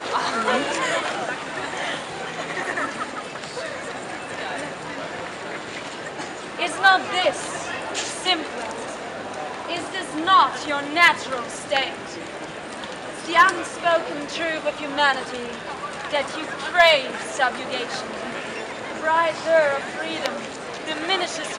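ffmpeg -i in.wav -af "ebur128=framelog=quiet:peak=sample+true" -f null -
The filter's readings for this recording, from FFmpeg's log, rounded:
Integrated loudness:
  I:         -23.4 LUFS
  Threshold: -33.4 LUFS
Loudness range:
  LRA:         7.9 LU
  Threshold: -43.3 LUFS
  LRA low:   -29.1 LUFS
  LRA high:  -21.2 LUFS
Sample peak:
  Peak:       -5.2 dBFS
True peak:
  Peak:       -5.1 dBFS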